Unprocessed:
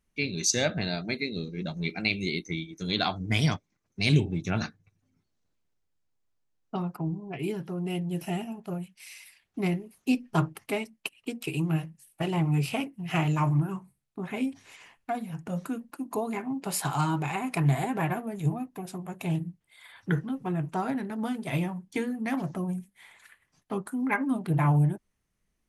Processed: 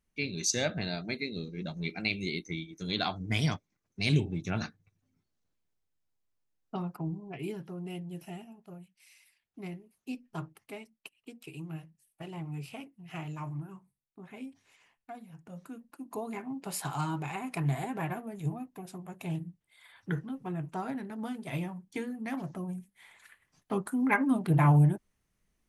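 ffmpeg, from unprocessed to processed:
-af "volume=3.35,afade=t=out:st=7.09:d=1.41:silence=0.334965,afade=t=in:st=15.59:d=0.73:silence=0.421697,afade=t=in:st=22.74:d=1.14:silence=0.446684"

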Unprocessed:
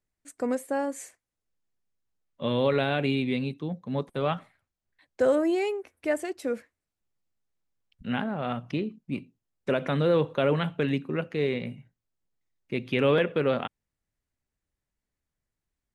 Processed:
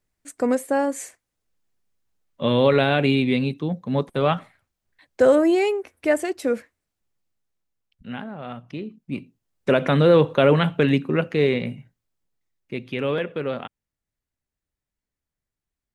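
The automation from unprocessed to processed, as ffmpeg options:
-af "volume=8.91,afade=t=out:st=6.52:d=1.61:silence=0.281838,afade=t=in:st=8.74:d=1.04:silence=0.251189,afade=t=out:st=11.31:d=1.63:silence=0.316228"

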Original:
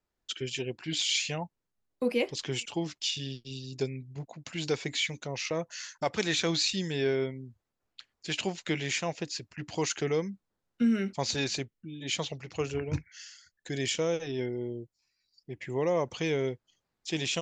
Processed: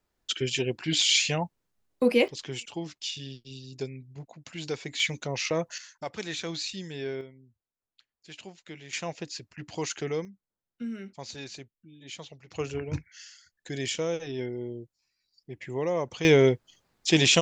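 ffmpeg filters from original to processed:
-af "asetnsamples=n=441:p=0,asendcmd='2.28 volume volume -3dB;5 volume volume 4dB;5.78 volume volume -6dB;7.21 volume volume -13dB;8.93 volume volume -2dB;10.25 volume volume -10dB;12.51 volume volume -0.5dB;16.25 volume volume 11dB',volume=2"

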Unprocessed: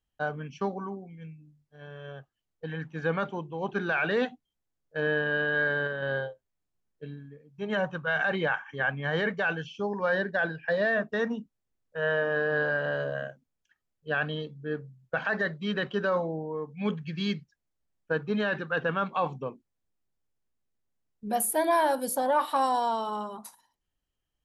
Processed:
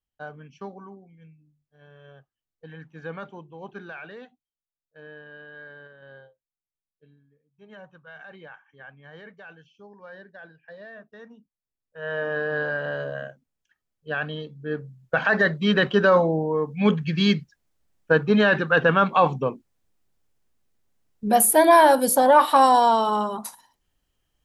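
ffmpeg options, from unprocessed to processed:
-af "volume=10,afade=t=out:st=3.57:d=0.65:silence=0.316228,afade=t=in:st=11.37:d=0.61:silence=0.334965,afade=t=in:st=11.98:d=0.28:silence=0.398107,afade=t=in:st=14.46:d=1.2:silence=0.334965"

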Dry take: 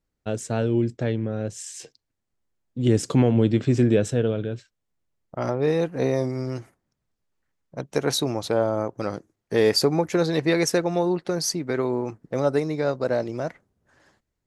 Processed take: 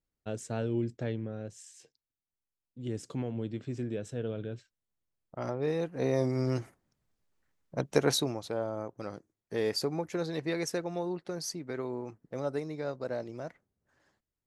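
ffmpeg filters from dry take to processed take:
-af "volume=2.37,afade=t=out:st=1.12:d=0.64:silence=0.421697,afade=t=in:st=4.03:d=0.47:silence=0.421697,afade=t=in:st=5.96:d=0.56:silence=0.354813,afade=t=out:st=7.87:d=0.54:silence=0.266073"

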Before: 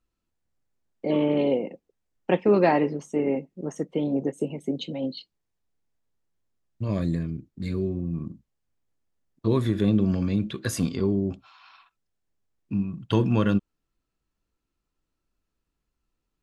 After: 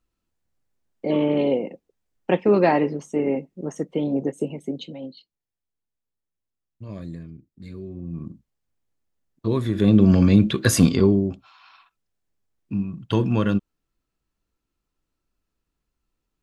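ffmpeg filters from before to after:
-af "volume=11.2,afade=t=out:st=4.42:d=0.74:silence=0.281838,afade=t=in:st=7.86:d=0.43:silence=0.354813,afade=t=in:st=9.69:d=0.51:silence=0.316228,afade=t=out:st=10.91:d=0.4:silence=0.354813"

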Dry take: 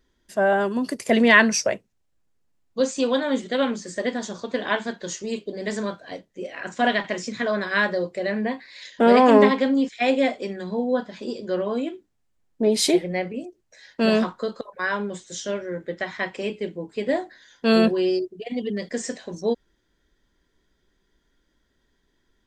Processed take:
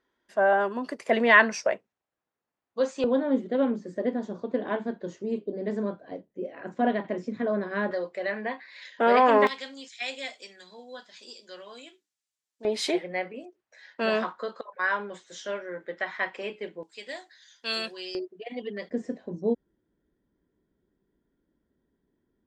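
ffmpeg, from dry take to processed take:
-af "asetnsamples=n=441:p=0,asendcmd='3.04 bandpass f 310;7.91 bandpass f 1300;9.47 bandpass f 6700;12.65 bandpass f 1300;16.83 bandpass f 5500;18.15 bandpass f 1200;18.9 bandpass f 230',bandpass=f=1000:t=q:w=0.71:csg=0"

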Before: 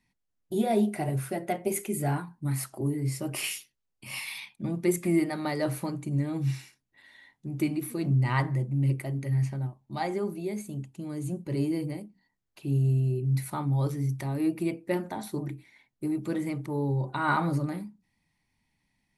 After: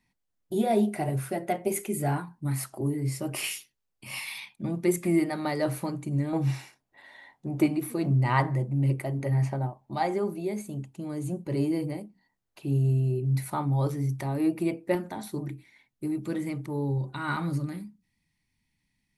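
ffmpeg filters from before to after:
-af "asetnsamples=n=441:p=0,asendcmd='6.33 equalizer g 13.5;7.66 equalizer g 6.5;9.2 equalizer g 13.5;9.94 equalizer g 4.5;14.95 equalizer g -2;16.98 equalizer g -9',equalizer=f=720:t=o:w=1.8:g=2"

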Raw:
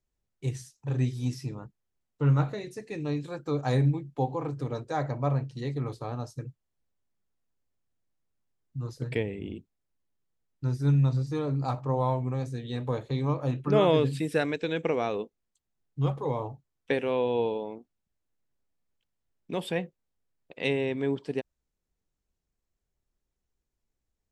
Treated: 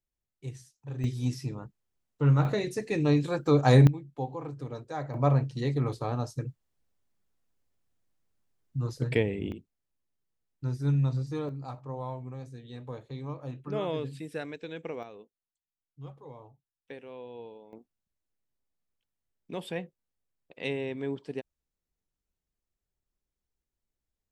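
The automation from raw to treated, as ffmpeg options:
-af "asetnsamples=n=441:p=0,asendcmd='1.04 volume volume 0.5dB;2.45 volume volume 7dB;3.87 volume volume -5.5dB;5.14 volume volume 3.5dB;9.52 volume volume -3dB;11.49 volume volume -10dB;15.03 volume volume -17dB;17.73 volume volume -5dB',volume=0.398"

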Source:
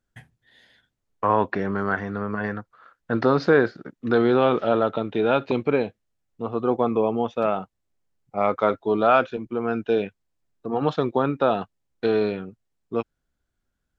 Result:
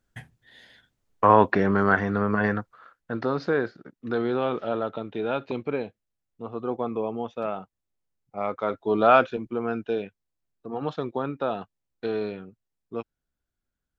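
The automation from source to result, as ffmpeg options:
-af "volume=3.98,afade=t=out:st=2.57:d=0.57:silence=0.281838,afade=t=in:st=8.65:d=0.48:silence=0.398107,afade=t=out:st=9.13:d=0.9:silence=0.398107"

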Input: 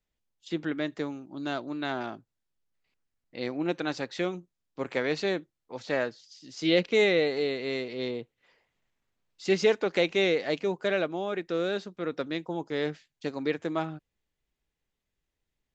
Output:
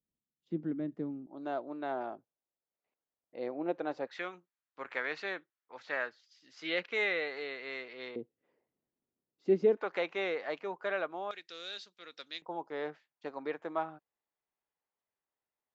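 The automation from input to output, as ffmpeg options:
-af "asetnsamples=n=441:p=0,asendcmd='1.27 bandpass f 620;4.07 bandpass f 1500;8.16 bandpass f 310;9.77 bandpass f 1100;11.31 bandpass f 4400;12.42 bandpass f 910',bandpass=f=210:t=q:w=1.4:csg=0"

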